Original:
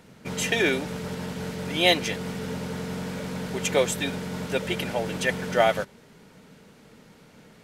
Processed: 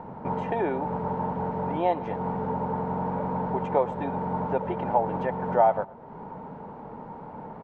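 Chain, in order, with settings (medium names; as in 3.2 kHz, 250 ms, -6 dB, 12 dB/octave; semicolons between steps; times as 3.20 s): compression 2:1, threshold -44 dBFS, peak gain reduction 16 dB; resonant low-pass 900 Hz, resonance Q 5.9; feedback delay 111 ms, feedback 37%, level -22 dB; trim +8.5 dB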